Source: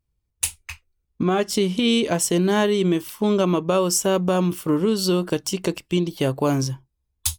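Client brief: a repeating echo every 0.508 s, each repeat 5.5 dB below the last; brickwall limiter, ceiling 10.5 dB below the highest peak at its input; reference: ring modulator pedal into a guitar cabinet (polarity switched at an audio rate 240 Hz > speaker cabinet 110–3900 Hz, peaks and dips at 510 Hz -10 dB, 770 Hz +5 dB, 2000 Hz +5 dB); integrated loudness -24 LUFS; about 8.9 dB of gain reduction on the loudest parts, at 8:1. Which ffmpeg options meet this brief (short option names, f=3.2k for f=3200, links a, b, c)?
-af "acompressor=threshold=-25dB:ratio=8,alimiter=limit=-21dB:level=0:latency=1,aecho=1:1:508|1016|1524|2032|2540|3048|3556:0.531|0.281|0.149|0.079|0.0419|0.0222|0.0118,aeval=exprs='val(0)*sgn(sin(2*PI*240*n/s))':c=same,highpass=110,equalizer=f=510:t=q:w=4:g=-10,equalizer=f=770:t=q:w=4:g=5,equalizer=f=2k:t=q:w=4:g=5,lowpass=f=3.9k:w=0.5412,lowpass=f=3.9k:w=1.3066,volume=7dB"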